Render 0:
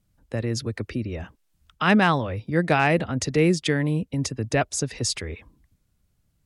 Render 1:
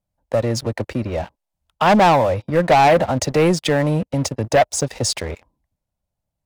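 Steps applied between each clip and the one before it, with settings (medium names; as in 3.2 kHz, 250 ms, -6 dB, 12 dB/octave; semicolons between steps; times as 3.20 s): high-order bell 720 Hz +12 dB 1.1 oct; waveshaping leveller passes 3; trim -6.5 dB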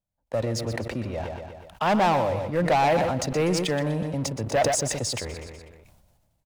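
on a send: feedback delay 123 ms, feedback 35%, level -11 dB; on the sum: decay stretcher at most 35 dB/s; trim -8.5 dB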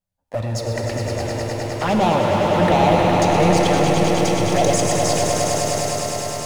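touch-sensitive flanger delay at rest 11.1 ms, full sweep at -18.5 dBFS; echo with a slow build-up 103 ms, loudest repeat 5, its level -7 dB; pitch-shifted reverb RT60 3.3 s, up +7 st, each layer -8 dB, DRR 4 dB; trim +4.5 dB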